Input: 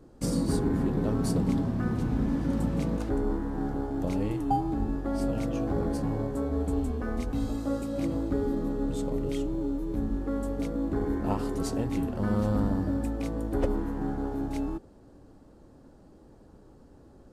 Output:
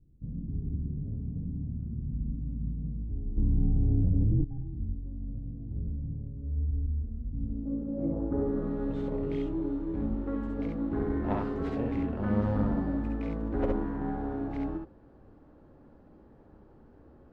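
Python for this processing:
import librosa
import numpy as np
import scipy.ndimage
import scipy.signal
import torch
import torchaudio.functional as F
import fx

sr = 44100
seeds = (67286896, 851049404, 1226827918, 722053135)

y = fx.tracing_dist(x, sr, depth_ms=0.28)
y = fx.filter_sweep_lowpass(y, sr, from_hz=110.0, to_hz=2200.0, start_s=7.24, end_s=8.75, q=1.0)
y = fx.room_early_taps(y, sr, ms=(55, 68), db=(-7.5, -3.0))
y = fx.env_flatten(y, sr, amount_pct=100, at=(3.36, 4.43), fade=0.02)
y = y * librosa.db_to_amplitude(-4.0)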